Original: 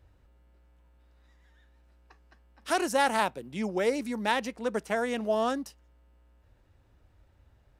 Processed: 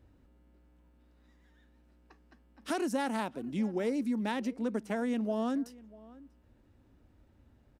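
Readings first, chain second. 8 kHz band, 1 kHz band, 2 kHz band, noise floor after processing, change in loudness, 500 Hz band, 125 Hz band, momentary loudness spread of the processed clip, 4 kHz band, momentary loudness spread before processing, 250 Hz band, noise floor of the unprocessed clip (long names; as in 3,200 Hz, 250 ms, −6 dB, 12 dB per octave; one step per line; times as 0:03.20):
−9.0 dB, −9.0 dB, −9.5 dB, −65 dBFS, −4.5 dB, −6.5 dB, +0.5 dB, 14 LU, −9.5 dB, 9 LU, +2.0 dB, −64 dBFS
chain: parametric band 250 Hz +13 dB 1.1 octaves
downward compressor 2 to 1, threshold −30 dBFS, peak gain reduction 7.5 dB
slap from a distant wall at 110 metres, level −21 dB
level −3.5 dB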